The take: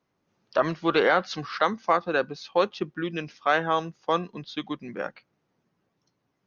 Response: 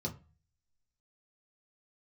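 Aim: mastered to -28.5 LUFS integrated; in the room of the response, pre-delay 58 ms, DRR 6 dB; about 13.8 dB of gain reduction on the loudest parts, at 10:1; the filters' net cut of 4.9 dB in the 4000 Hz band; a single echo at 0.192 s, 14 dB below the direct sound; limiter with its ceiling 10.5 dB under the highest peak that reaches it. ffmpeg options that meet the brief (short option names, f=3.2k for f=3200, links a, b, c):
-filter_complex "[0:a]equalizer=f=4k:t=o:g=-6,acompressor=threshold=-31dB:ratio=10,alimiter=level_in=2.5dB:limit=-24dB:level=0:latency=1,volume=-2.5dB,aecho=1:1:192:0.2,asplit=2[a][b];[1:a]atrim=start_sample=2205,adelay=58[c];[b][c]afir=irnorm=-1:irlink=0,volume=-7.5dB[d];[a][d]amix=inputs=2:normalize=0,volume=8.5dB"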